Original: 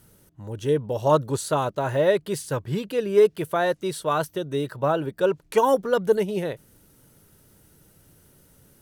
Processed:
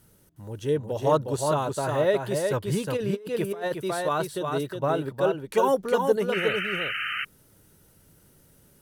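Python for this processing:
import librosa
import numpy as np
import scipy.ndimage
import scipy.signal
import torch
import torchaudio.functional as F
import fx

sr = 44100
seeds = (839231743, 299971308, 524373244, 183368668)

y = x + 10.0 ** (-4.5 / 20.0) * np.pad(x, (int(362 * sr / 1000.0), 0))[:len(x)]
y = fx.over_compress(y, sr, threshold_db=-23.0, ratio=-0.5, at=(2.52, 3.74), fade=0.02)
y = fx.spec_paint(y, sr, seeds[0], shape='noise', start_s=6.32, length_s=0.93, low_hz=1200.0, high_hz=3100.0, level_db=-27.0)
y = y * 10.0 ** (-3.0 / 20.0)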